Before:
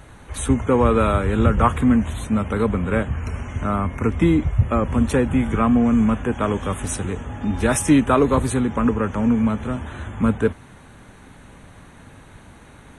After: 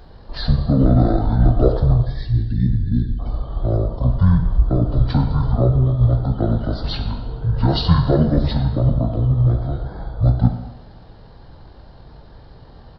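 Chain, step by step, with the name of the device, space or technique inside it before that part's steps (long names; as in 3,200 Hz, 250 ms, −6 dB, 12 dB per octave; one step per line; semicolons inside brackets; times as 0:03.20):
0:02.05–0:03.20: elliptic band-stop filter 680–3,800 Hz, stop band 40 dB
monster voice (pitch shifter −10.5 semitones; formants moved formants −3 semitones; low-shelf EQ 170 Hz +4 dB; convolution reverb RT60 1.1 s, pre-delay 13 ms, DRR 5 dB)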